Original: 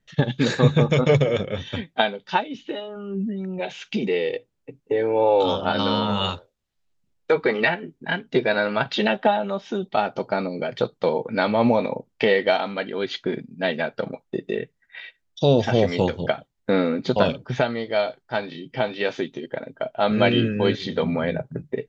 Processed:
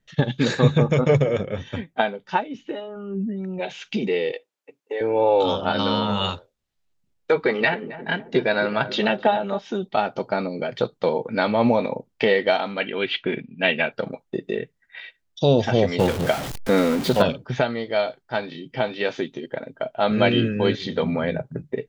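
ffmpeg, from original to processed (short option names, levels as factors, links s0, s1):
-filter_complex "[0:a]asettb=1/sr,asplit=3[s0][s1][s2];[s0]atrim=end=0.784[s3];[s1]atrim=start=0.78:end=3.44,asetpts=PTS-STARTPTS,afade=t=in:d=0.004:c=qsin,afade=t=out:st=2.656:d=0.004:c=qsin,equalizer=f=3800:w=1.3:g=-8.5[s4];[s2]atrim=start=3.436[s5];[s3][s4]acrossfade=d=0.004:c1=hsin:c2=qsin[s6];[s6][s5]acrossfade=d=0.004:c1=qsin:c2=hsin,asettb=1/sr,asplit=3[s7][s8][s9];[s7]atrim=end=4.324[s10];[s8]atrim=start=4.32:end=5.01,asetpts=PTS-STARTPTS,afade=t=in:d=0.004:c=qsin,afade=t=out:st=0.686:d=0.004:c=qsin,highpass=590[s11];[s9]atrim=start=5.006[s12];[s10][s11]acrossfade=d=0.004:c1=hsin:c2=qsin[s13];[s13][s12]acrossfade=d=0.004:c1=qsin:c2=hsin,asettb=1/sr,asplit=3[s14][s15][s16];[s14]atrim=end=7.344[s17];[s15]atrim=start=7.34:end=9.59,asetpts=PTS-STARTPTS,afade=t=in:d=0.004:c=qsin,afade=t=out:st=2.246:d=0.004:c=qsin,asplit=2[s18][s19];[s19]adelay=268,lowpass=f=850:p=1,volume=0.251,asplit=2[s20][s21];[s21]adelay=268,lowpass=f=850:p=1,volume=0.52,asplit=2[s22][s23];[s23]adelay=268,lowpass=f=850:p=1,volume=0.52,asplit=2[s24][s25];[s25]adelay=268,lowpass=f=850:p=1,volume=0.52,asplit=2[s26][s27];[s27]adelay=268,lowpass=f=850:p=1,volume=0.52[s28];[s18][s20][s22][s24][s26][s28]amix=inputs=6:normalize=0,atrim=end_sample=99225[s29];[s16]atrim=start=9.586[s30];[s17][s29]acrossfade=d=0.004:c1=hsin:c2=qsin[s31];[s31][s30]acrossfade=d=0.004:c1=qsin:c2=hsin,asettb=1/sr,asplit=3[s32][s33][s34];[s32]atrim=end=12.804[s35];[s33]atrim=start=12.8:end=13.92,asetpts=PTS-STARTPTS,afade=t=in:d=0.004:c=qsin,afade=t=out:st=1.116:d=0.004:c=qsin,lowpass=f=2700:t=q:w=4.7[s36];[s34]atrim=start=13.916[s37];[s35][s36]acrossfade=d=0.004:c1=hsin:c2=qsin[s38];[s38][s37]acrossfade=d=0.004:c1=qsin:c2=hsin,asettb=1/sr,asplit=3[s39][s40][s41];[s39]atrim=end=15.994[s42];[s40]atrim=start=15.99:end=17.22,asetpts=PTS-STARTPTS,afade=t=in:d=0.004:c=qsin,afade=t=out:st=1.226:d=0.004:c=qsin,aeval=exprs='val(0)+0.5*0.0596*sgn(val(0))':c=same[s43];[s41]atrim=start=17.216[s44];[s42][s43]acrossfade=d=0.004:c1=hsin:c2=qsin[s45];[s45][s44]acrossfade=d=0.004:c1=qsin:c2=hsin"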